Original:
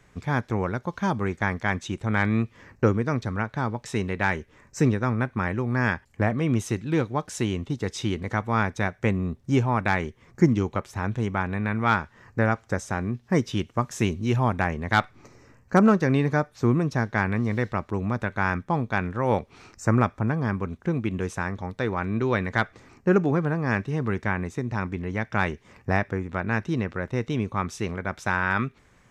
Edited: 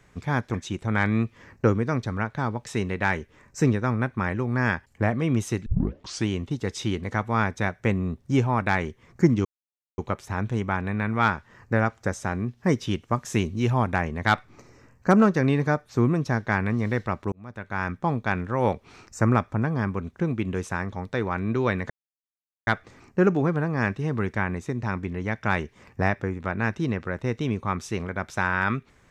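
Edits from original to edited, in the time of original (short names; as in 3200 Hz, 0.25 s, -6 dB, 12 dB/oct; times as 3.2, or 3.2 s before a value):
0.54–1.73 cut
6.85 tape start 0.62 s
10.64 insert silence 0.53 s
17.98–18.72 fade in linear
22.56 insert silence 0.77 s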